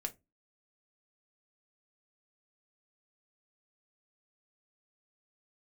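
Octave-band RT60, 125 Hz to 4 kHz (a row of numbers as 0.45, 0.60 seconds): 0.35, 0.35, 0.25, 0.20, 0.15, 0.15 seconds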